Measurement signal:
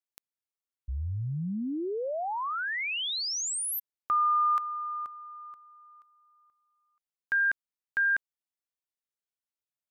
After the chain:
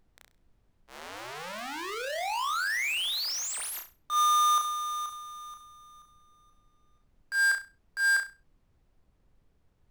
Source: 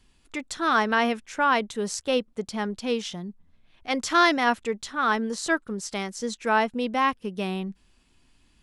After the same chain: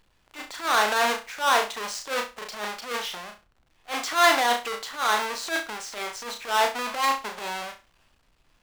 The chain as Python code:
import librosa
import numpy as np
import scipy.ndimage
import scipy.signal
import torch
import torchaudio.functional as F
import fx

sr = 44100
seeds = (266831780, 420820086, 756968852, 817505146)

p1 = fx.halfwave_hold(x, sr)
p2 = scipy.signal.sosfilt(scipy.signal.butter(2, 720.0, 'highpass', fs=sr, output='sos'), p1)
p3 = fx.high_shelf(p2, sr, hz=6700.0, db=-10.5)
p4 = p3 + fx.room_flutter(p3, sr, wall_m=5.7, rt60_s=0.28, dry=0)
p5 = fx.transient(p4, sr, attack_db=-11, sustain_db=3)
y = fx.dmg_noise_colour(p5, sr, seeds[0], colour='brown', level_db=-65.0)